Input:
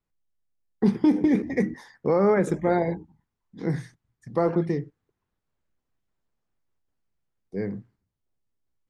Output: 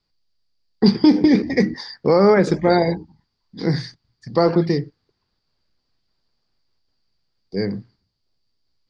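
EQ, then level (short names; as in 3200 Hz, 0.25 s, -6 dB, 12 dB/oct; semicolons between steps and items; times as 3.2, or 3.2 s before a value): synth low-pass 4700 Hz, resonance Q 14; +6.5 dB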